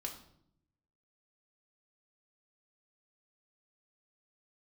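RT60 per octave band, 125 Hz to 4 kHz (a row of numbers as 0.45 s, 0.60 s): 1.2 s, 1.1 s, 0.75 s, 0.60 s, 0.55 s, 0.55 s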